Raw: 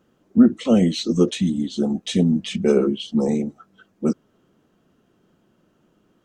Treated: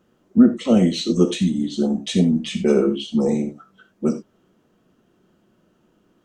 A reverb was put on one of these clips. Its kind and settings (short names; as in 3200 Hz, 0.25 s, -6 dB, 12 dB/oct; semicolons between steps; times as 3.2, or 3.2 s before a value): non-linear reverb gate 0.11 s flat, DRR 7 dB